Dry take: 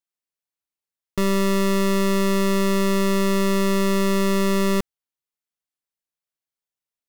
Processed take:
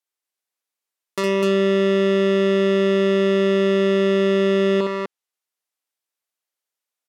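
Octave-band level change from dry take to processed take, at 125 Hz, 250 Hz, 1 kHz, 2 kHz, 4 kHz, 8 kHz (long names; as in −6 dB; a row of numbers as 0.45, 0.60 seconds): can't be measured, 0.0 dB, −3.0 dB, +2.0 dB, +1.0 dB, below −10 dB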